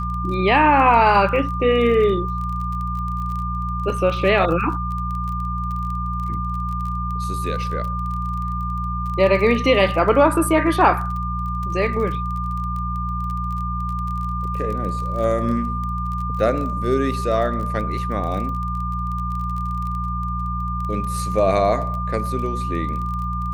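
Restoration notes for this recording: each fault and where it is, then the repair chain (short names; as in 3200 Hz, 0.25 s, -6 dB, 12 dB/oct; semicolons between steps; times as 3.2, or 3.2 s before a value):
crackle 25/s -28 dBFS
hum 60 Hz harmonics 3 -26 dBFS
tone 1200 Hz -26 dBFS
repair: de-click; de-hum 60 Hz, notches 3; notch 1200 Hz, Q 30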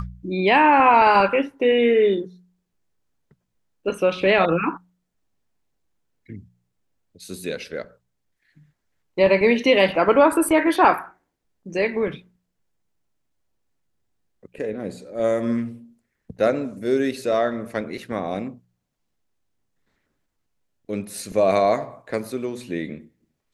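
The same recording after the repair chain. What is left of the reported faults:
none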